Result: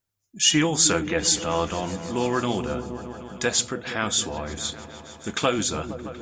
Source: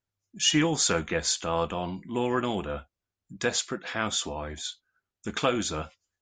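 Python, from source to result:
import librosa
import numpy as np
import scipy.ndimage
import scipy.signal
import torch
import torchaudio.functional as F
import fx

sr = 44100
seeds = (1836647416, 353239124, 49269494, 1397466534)

y = fx.high_shelf(x, sr, hz=7600.0, db=10.0)
y = fx.echo_opening(y, sr, ms=155, hz=200, octaves=1, feedback_pct=70, wet_db=-6)
y = y * 10.0 ** (2.5 / 20.0)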